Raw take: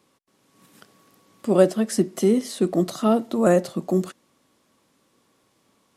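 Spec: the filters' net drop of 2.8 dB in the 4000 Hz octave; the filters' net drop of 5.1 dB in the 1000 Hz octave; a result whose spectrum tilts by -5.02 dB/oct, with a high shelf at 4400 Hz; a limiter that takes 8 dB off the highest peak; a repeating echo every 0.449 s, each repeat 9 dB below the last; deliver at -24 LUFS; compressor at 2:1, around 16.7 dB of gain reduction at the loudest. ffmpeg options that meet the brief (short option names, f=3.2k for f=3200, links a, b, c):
-af "equalizer=f=1k:t=o:g=-8.5,equalizer=f=4k:t=o:g=-8,highshelf=f=4.4k:g=7.5,acompressor=threshold=-44dB:ratio=2,alimiter=level_in=5.5dB:limit=-24dB:level=0:latency=1,volume=-5.5dB,aecho=1:1:449|898|1347|1796:0.355|0.124|0.0435|0.0152,volume=16.5dB"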